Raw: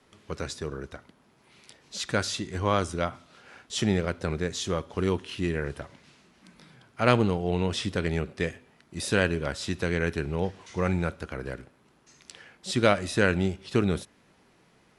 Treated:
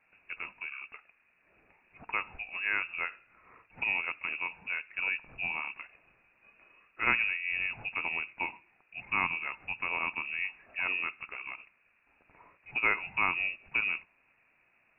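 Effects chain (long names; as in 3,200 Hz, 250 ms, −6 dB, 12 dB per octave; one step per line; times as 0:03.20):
voice inversion scrambler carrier 2,700 Hz
dynamic equaliser 940 Hz, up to +7 dB, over −50 dBFS, Q 5.2
level −7 dB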